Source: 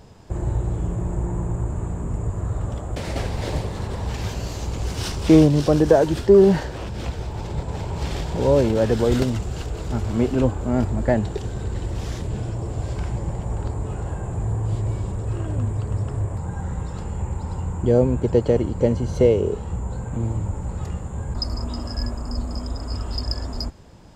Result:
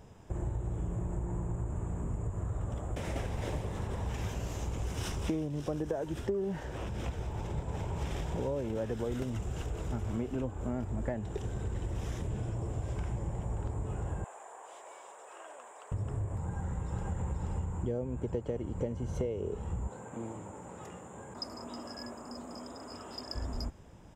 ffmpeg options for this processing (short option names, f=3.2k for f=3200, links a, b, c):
-filter_complex "[0:a]asettb=1/sr,asplit=3[a][b][c];[a]atrim=end=14.244[d];[b]atrim=start=14.24:end=15.92,asetpts=PTS-STARTPTS,afade=t=in:d=0.004:c=qsin,afade=t=out:st=1.676:d=0.004:c=qsin,highpass=f=620:w=0.5412,highpass=f=620:w=1.3066[e];[c]atrim=start=15.916[f];[d][e]acrossfade=d=0.004:c1=hsin:c2=qsin[g];[g][f]acrossfade=d=0.004:c1=qsin:c2=hsin,asplit=2[h][i];[i]afade=t=in:st=16.44:d=0.01,afade=t=out:st=17.17:d=0.01,aecho=0:1:480|960|1440:1|0.15|0.0225[j];[h][j]amix=inputs=2:normalize=0,asettb=1/sr,asplit=3[k][l][m];[k]atrim=end=19.884[n];[l]atrim=start=19.88:end=23.35,asetpts=PTS-STARTPTS,afade=t=in:d=0.004:c=qsin,afade=t=out:st=3.466:d=0.004:c=qsin,highpass=280[o];[m]atrim=start=23.346[p];[n][o]acrossfade=d=0.004:c1=hsin:c2=qsin[q];[q][p]acrossfade=d=0.004:c1=qsin:c2=hsin,equalizer=f=4.4k:w=4.6:g=-13.5,acompressor=threshold=-23dB:ratio=12,volume=-7dB"